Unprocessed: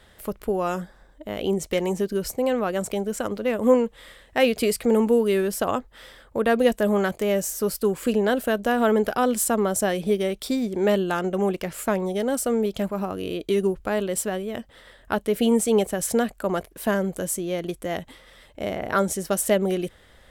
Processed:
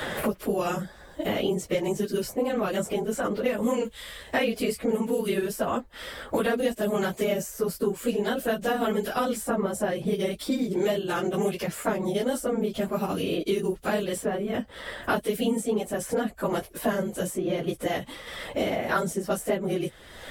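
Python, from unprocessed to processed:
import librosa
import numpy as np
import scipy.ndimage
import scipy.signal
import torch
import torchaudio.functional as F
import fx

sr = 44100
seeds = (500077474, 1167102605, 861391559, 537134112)

y = fx.phase_scramble(x, sr, seeds[0], window_ms=50)
y = fx.band_squash(y, sr, depth_pct=100)
y = F.gain(torch.from_numpy(y), -4.5).numpy()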